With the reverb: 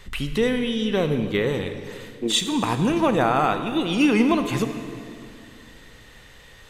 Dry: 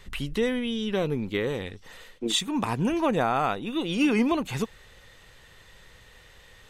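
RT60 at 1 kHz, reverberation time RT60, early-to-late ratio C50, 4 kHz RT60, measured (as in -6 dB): 2.3 s, 2.5 s, 8.5 dB, 2.0 s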